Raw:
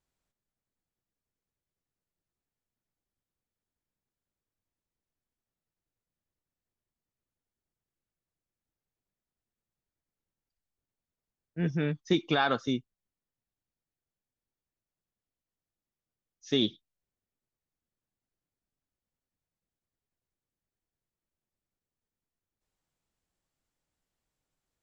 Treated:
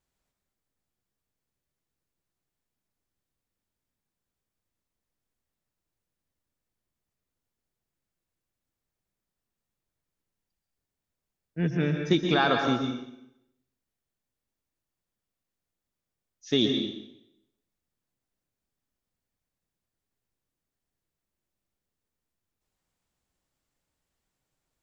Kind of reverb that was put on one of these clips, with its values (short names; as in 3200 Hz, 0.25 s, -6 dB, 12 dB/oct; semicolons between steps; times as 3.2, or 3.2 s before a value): plate-style reverb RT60 0.83 s, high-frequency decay 0.9×, pre-delay 0.11 s, DRR 3.5 dB; gain +2.5 dB